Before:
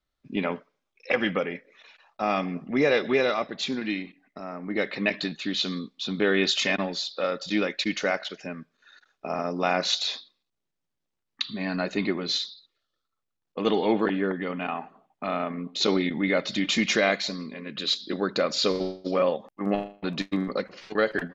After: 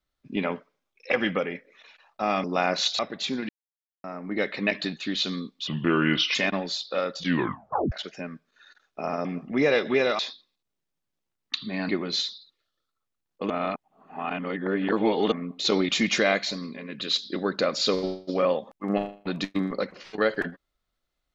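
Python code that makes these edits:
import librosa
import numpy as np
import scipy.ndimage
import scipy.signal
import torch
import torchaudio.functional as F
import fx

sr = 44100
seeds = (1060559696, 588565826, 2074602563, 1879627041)

y = fx.edit(x, sr, fx.swap(start_s=2.44, length_s=0.94, other_s=9.51, other_length_s=0.55),
    fx.silence(start_s=3.88, length_s=0.55),
    fx.speed_span(start_s=6.06, length_s=0.55, speed=0.81),
    fx.tape_stop(start_s=7.45, length_s=0.73),
    fx.cut(start_s=11.76, length_s=0.29),
    fx.reverse_span(start_s=13.66, length_s=1.82),
    fx.cut(start_s=16.05, length_s=0.61), tone=tone)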